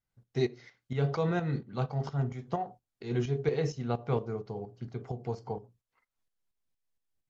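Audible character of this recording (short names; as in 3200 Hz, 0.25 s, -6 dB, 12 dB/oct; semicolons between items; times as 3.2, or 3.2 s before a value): tremolo saw up 4.3 Hz, depth 65%; MP3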